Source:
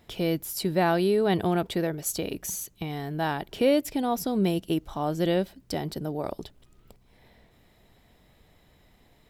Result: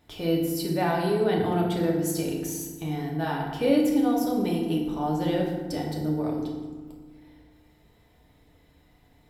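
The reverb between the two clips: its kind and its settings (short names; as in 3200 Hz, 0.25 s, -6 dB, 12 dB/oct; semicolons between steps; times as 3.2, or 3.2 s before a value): FDN reverb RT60 1.4 s, low-frequency decay 1.6×, high-frequency decay 0.55×, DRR -2.5 dB; gain -5.5 dB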